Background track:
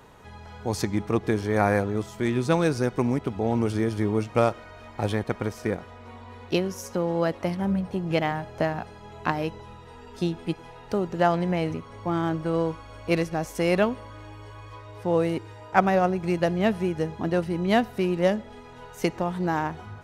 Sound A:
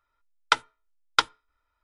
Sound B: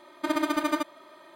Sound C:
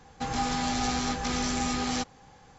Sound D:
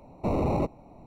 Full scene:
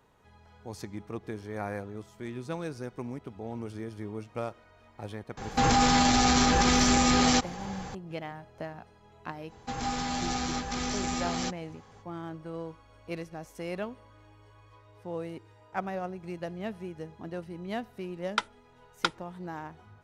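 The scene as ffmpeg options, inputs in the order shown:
-filter_complex "[3:a]asplit=2[a][b];[0:a]volume=-13.5dB[c];[a]alimiter=level_in=26.5dB:limit=-1dB:release=50:level=0:latency=1,atrim=end=2.58,asetpts=PTS-STARTPTS,volume=-13dB,afade=t=in:d=0.004:c=hsin,afade=t=out:st=2.576:d=0.004:c=hsin,adelay=236817S[d];[b]atrim=end=2.58,asetpts=PTS-STARTPTS,volume=-3dB,afade=t=in:d=0.05,afade=t=out:st=2.53:d=0.05,adelay=9470[e];[1:a]atrim=end=1.83,asetpts=PTS-STARTPTS,volume=-7.5dB,afade=t=in:d=0.004:c=hsin,afade=t=out:st=1.826:d=0.004:c=hsin,adelay=17860[f];[c][d][e][f]amix=inputs=4:normalize=0"

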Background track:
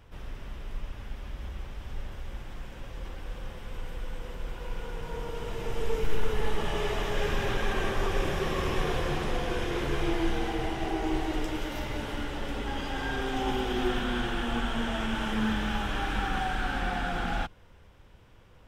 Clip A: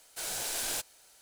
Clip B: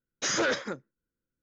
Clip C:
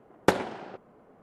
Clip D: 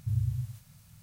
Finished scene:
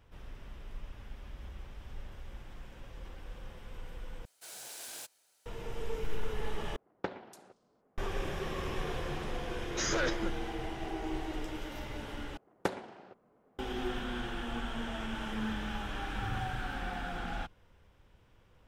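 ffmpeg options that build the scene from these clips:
-filter_complex "[3:a]asplit=2[a][b];[0:a]volume=-7.5dB[c];[1:a]highpass=f=160:p=1[d];[a]acrossover=split=4900[e][f];[f]adelay=290[g];[e][g]amix=inputs=2:normalize=0[h];[c]asplit=4[i][j][k][l];[i]atrim=end=4.254[m];[d]atrim=end=1.21,asetpts=PTS-STARTPTS,volume=-11dB[n];[j]atrim=start=5.456:end=6.764[o];[h]atrim=end=1.22,asetpts=PTS-STARTPTS,volume=-15dB[p];[k]atrim=start=7.976:end=12.374[q];[b]atrim=end=1.22,asetpts=PTS-STARTPTS,volume=-11dB[r];[l]atrim=start=13.586[s];[2:a]atrim=end=1.42,asetpts=PTS-STARTPTS,volume=-5.5dB,afade=t=in:d=0.004:c=hsin,afade=t=out:st=1.416:d=0.004:c=hsin,adelay=9550[t];[4:a]atrim=end=1.02,asetpts=PTS-STARTPTS,volume=-11.5dB,afade=t=in:d=0.004:c=hsin,afade=t=out:st=1.016:d=0.004:c=hsin,adelay=16150[u];[m][n]acrossfade=d=0.004:c1=hsin:c2=hsin[v];[v][o]acrossfade=d=0.004:c1=hsin:c2=hsin[w];[w][p]acrossfade=d=0.004:c1=hsin:c2=hsin[x];[x][q]acrossfade=d=0.004:c1=hsin:c2=hsin[y];[y][r]acrossfade=d=0.004:c1=hsin:c2=hsin[z];[z][s]acrossfade=d=0.004:c1=hsin:c2=hsin[aa];[aa][t][u]amix=inputs=3:normalize=0"

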